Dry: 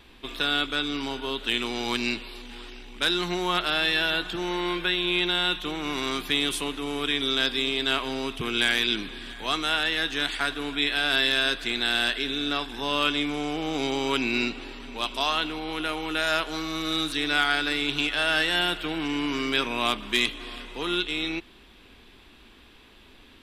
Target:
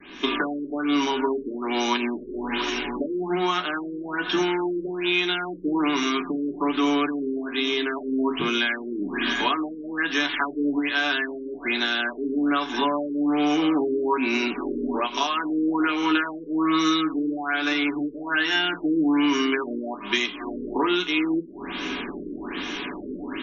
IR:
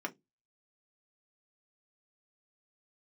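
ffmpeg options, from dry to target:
-filter_complex "[0:a]dynaudnorm=f=150:g=3:m=11.5dB,adynamicequalizer=threshold=0.00501:dfrequency=1000:dqfactor=2.4:tfrequency=1000:tqfactor=2.4:attack=5:release=100:ratio=0.375:range=2.5:mode=boostabove:tftype=bell,acompressor=threshold=-32dB:ratio=10,aemphasis=mode=production:type=75kf,aeval=exprs='sgn(val(0))*max(abs(val(0))-0.00119,0)':c=same,aexciter=amount=4.6:drive=5.1:freq=6.8k[a];[1:a]atrim=start_sample=2205,atrim=end_sample=3528[b];[a][b]afir=irnorm=-1:irlink=0,afftfilt=real='re*lt(b*sr/1024,540*pow(7000/540,0.5+0.5*sin(2*PI*1.2*pts/sr)))':imag='im*lt(b*sr/1024,540*pow(7000/540,0.5+0.5*sin(2*PI*1.2*pts/sr)))':win_size=1024:overlap=0.75,volume=7.5dB"

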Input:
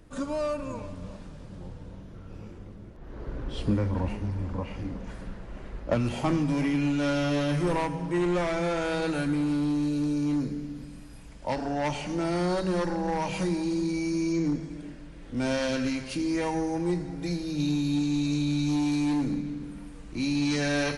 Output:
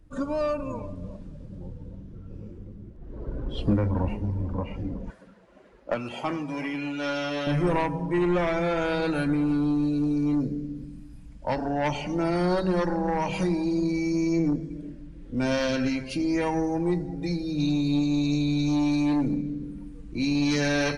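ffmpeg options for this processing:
-filter_complex "[0:a]asettb=1/sr,asplit=3[a][b][c];[a]atrim=end=5.104[d];[b]atrim=start=5.1:end=7.47,asetpts=PTS-STARTPTS,afade=t=in:d=0.004:c=qsin,afade=t=out:st=2.366:d=0.004:c=qsin,highpass=f=670:p=1[e];[c]atrim=start=7.466[f];[d][e]acrossfade=d=0.004:c1=hsin:c2=qsin[g];[g][f]acrossfade=d=0.004:c1=qsin:c2=hsin,afftdn=nr=13:nf=-43,aeval=exprs='0.158*(cos(1*acos(clip(val(0)/0.158,-1,1)))-cos(1*PI/2))+0.0158*(cos(4*acos(clip(val(0)/0.158,-1,1)))-cos(4*PI/2))+0.00631*(cos(6*acos(clip(val(0)/0.158,-1,1)))-cos(6*PI/2))':c=same,volume=2.5dB"

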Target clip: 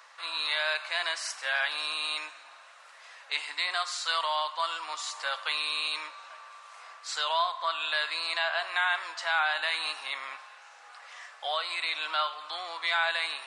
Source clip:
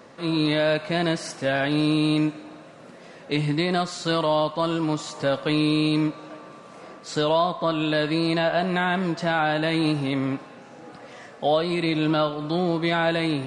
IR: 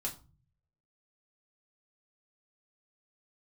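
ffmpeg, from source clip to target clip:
-af "highpass=f=960:w=0.5412,highpass=f=960:w=1.3066"

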